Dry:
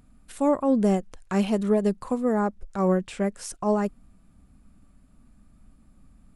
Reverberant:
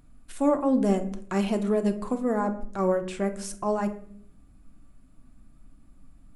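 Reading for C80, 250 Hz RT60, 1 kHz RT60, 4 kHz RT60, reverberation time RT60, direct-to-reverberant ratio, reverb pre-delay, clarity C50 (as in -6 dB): 17.0 dB, 0.85 s, 0.50 s, 0.35 s, 0.60 s, 6.0 dB, 3 ms, 13.0 dB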